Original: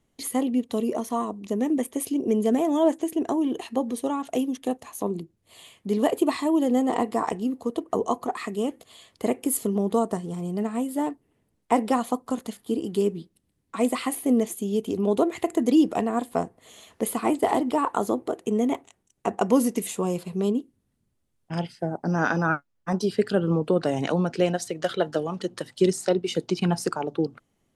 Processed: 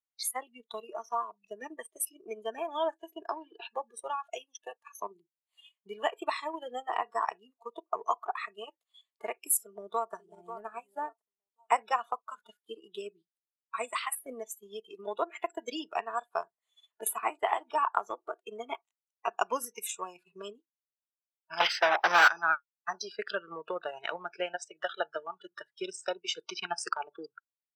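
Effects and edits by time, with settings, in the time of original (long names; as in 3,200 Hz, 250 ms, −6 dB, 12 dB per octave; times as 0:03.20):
0:03.26–0:03.75: bad sample-rate conversion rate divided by 4×, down none, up filtered
0:09.56–0:10.13: delay throw 540 ms, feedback 40%, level −11 dB
0:21.60–0:22.28: mid-hump overdrive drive 36 dB, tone 2,200 Hz, clips at −9 dBFS
0:23.79–0:26.22: high-shelf EQ 2,300 Hz −5 dB
whole clip: Chebyshev high-pass filter 1,100 Hz, order 2; noise reduction from a noise print of the clip's start 25 dB; transient designer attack +4 dB, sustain −6 dB; level −1.5 dB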